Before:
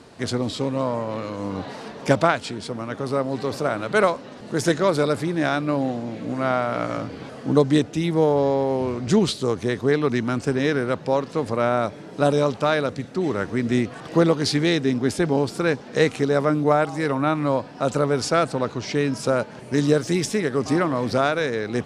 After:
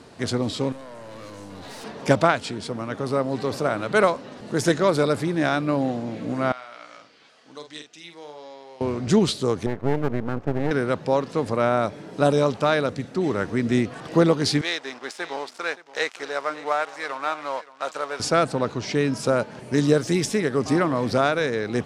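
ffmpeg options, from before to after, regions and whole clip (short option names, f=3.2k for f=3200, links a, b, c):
-filter_complex "[0:a]asettb=1/sr,asplit=3[a][b][c];[a]atrim=end=0.724[d];[b]atrim=start=0.72:end=1.84,asetpts=PTS-STARTPTS,afade=t=in:d=0.004:c=qsin,afade=t=out:st=1.116:d=0.004:c=qsin,aemphasis=mode=production:type=75kf,acompressor=threshold=-29dB:ratio=6:attack=3.2:release=140:knee=1:detection=peak,aeval=exprs='(tanh(56.2*val(0)+0.4)-tanh(0.4))/56.2':c=same[e];[c]atrim=start=1.836[f];[d][e]acrossfade=d=0.004:c1=hsin:c2=qsin[g];[g][f]acrossfade=d=0.004:c1=qsin:c2=hsin,asettb=1/sr,asplit=3[h][i][j];[h]atrim=end=6.524[k];[i]atrim=start=6.52:end=8.81,asetpts=PTS-STARTPTS,afade=t=in:d=0.004:c=qsin,afade=t=out:st=2.286:d=0.004:c=qsin,lowpass=4.4k,aderivative,asplit=2[l][m];[m]adelay=47,volume=-8dB[n];[l][n]amix=inputs=2:normalize=0,atrim=end_sample=100989[o];[j]atrim=start=8.806[p];[k][o]acrossfade=d=0.004:c1=hsin:c2=qsin[q];[q][p]acrossfade=d=0.004:c1=qsin:c2=hsin,asettb=1/sr,asplit=3[r][s][t];[r]atrim=end=9.664[u];[s]atrim=start=9.66:end=10.71,asetpts=PTS-STARTPTS,afade=t=in:d=0.004:c=qsin,afade=t=out:st=1.046:d=0.004:c=qsin,lowpass=1.2k,aeval=exprs='max(val(0),0)':c=same[v];[t]atrim=start=10.706[w];[u][v]acrossfade=d=0.004:c1=hsin:c2=qsin[x];[x][w]acrossfade=d=0.004:c1=qsin:c2=hsin,asettb=1/sr,asplit=3[y][z][aa];[y]atrim=end=14.614[ab];[z]atrim=start=14.61:end=18.2,asetpts=PTS-STARTPTS,afade=t=in:d=0.004:c=qsin,afade=t=out:st=3.586:d=0.004:c=qsin,aeval=exprs='sgn(val(0))*max(abs(val(0))-0.0178,0)':c=same,highpass=780,lowpass=7.9k,aecho=1:1:572:0.133,atrim=end_sample=158319[ac];[aa]atrim=start=18.196[ad];[ab][ac]acrossfade=d=0.004:c1=hsin:c2=qsin[ae];[ae][ad]acrossfade=d=0.004:c1=qsin:c2=hsin"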